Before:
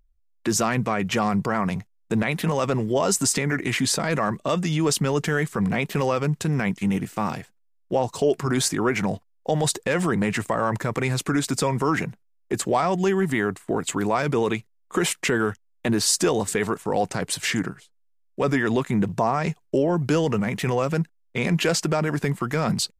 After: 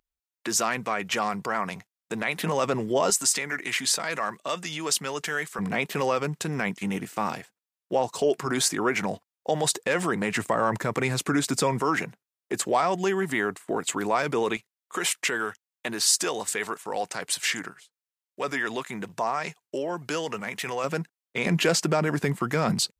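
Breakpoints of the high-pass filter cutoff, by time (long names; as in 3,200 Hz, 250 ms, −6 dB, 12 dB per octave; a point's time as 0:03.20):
high-pass filter 6 dB per octave
730 Hz
from 0:02.37 300 Hz
from 0:03.10 1,200 Hz
from 0:05.59 380 Hz
from 0:10.36 180 Hz
from 0:11.80 420 Hz
from 0:14.57 1,100 Hz
from 0:20.84 430 Hz
from 0:21.46 140 Hz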